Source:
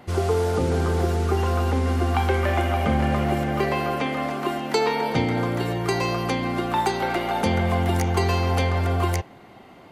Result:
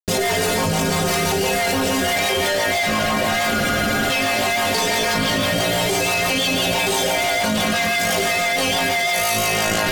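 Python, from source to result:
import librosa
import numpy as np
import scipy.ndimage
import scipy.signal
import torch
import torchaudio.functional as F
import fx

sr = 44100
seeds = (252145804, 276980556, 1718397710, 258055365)

y = fx.fixed_phaser(x, sr, hz=330.0, stages=6)
y = fx.room_flutter(y, sr, wall_m=3.2, rt60_s=1.5)
y = fx.fuzz(y, sr, gain_db=36.0, gate_db=-36.0)
y = fx.rotary(y, sr, hz=6.0)
y = fx.stiff_resonator(y, sr, f0_hz=93.0, decay_s=0.28, stiffness=0.008)
y = fx.spec_freeze(y, sr, seeds[0], at_s=3.53, hold_s=0.56)
y = fx.env_flatten(y, sr, amount_pct=100)
y = F.gain(torch.from_numpy(y), 5.0).numpy()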